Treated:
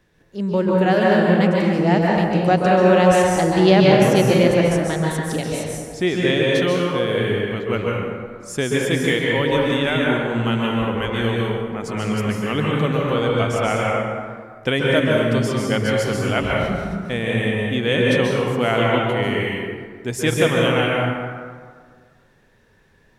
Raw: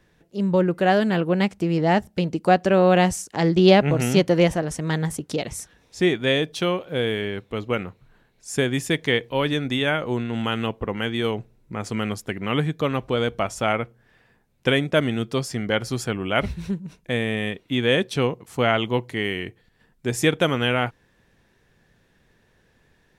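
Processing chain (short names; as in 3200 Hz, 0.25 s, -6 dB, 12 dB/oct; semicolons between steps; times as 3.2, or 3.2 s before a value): plate-style reverb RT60 1.8 s, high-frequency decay 0.5×, pre-delay 0.12 s, DRR -3.5 dB; gain -1 dB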